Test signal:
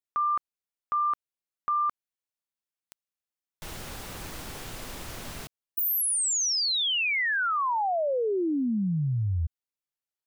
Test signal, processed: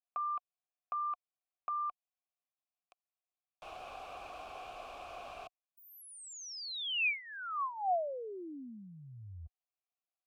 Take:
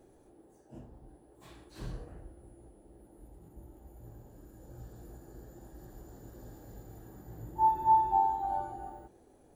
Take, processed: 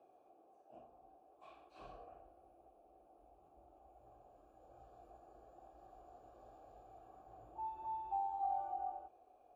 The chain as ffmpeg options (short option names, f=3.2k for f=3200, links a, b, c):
-filter_complex "[0:a]asubboost=boost=9:cutoff=55,acrossover=split=300|2100[a][b][c];[b]acompressor=threshold=-37dB:ratio=4:attack=3.2:release=314:knee=2.83:detection=peak[d];[a][d][c]amix=inputs=3:normalize=0,asplit=3[e][f][g];[e]bandpass=f=730:t=q:w=8,volume=0dB[h];[f]bandpass=f=1.09k:t=q:w=8,volume=-6dB[i];[g]bandpass=f=2.44k:t=q:w=8,volume=-9dB[j];[h][i][j]amix=inputs=3:normalize=0,volume=7dB"